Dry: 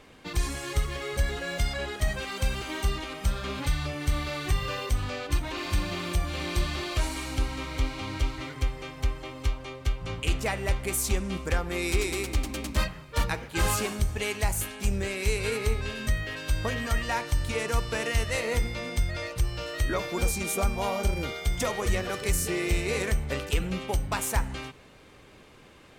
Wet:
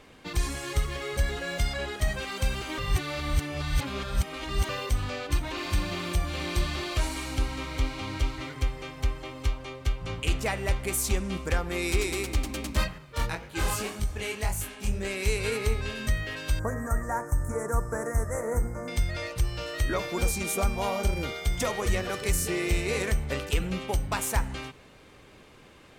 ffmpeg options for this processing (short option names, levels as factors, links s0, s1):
-filter_complex "[0:a]asettb=1/sr,asplit=3[s0][s1][s2];[s0]atrim=end=12.984[s3];[s1]atrim=start=12.98:end=15.05,asetpts=PTS-STARTPTS,afade=t=in:d=0.004:c=qsin,afade=t=out:st=2.066:d=0.004:c=qsin,flanger=delay=20:depth=6.1:speed=1.9[s4];[s2]atrim=start=15.046[s5];[s3][s4]acrossfade=d=0.004:c1=hsin:c2=qsin[s6];[s6][s5]acrossfade=d=0.004:c1=qsin:c2=hsin,asettb=1/sr,asplit=3[s7][s8][s9];[s7]atrim=end=16.594[s10];[s8]atrim=start=16.59:end=18.88,asetpts=PTS-STARTPTS,afade=t=in:d=0.004:c=qsin,afade=t=out:st=2.286:d=0.004:c=qsin,asuperstop=centerf=3400:order=8:qfactor=0.67[s11];[s9]atrim=start=18.876[s12];[s10][s11]acrossfade=d=0.004:c1=hsin:c2=qsin[s13];[s13][s12]acrossfade=d=0.004:c1=qsin:c2=hsin,asplit=3[s14][s15][s16];[s14]atrim=end=2.782[s17];[s15]atrim=start=2.778:end=4.692,asetpts=PTS-STARTPTS,areverse[s18];[s16]atrim=start=4.688[s19];[s17][s18]acrossfade=d=0.004:c1=hsin:c2=hsin[s20];[s20][s19]acrossfade=d=0.004:c1=hsin:c2=hsin"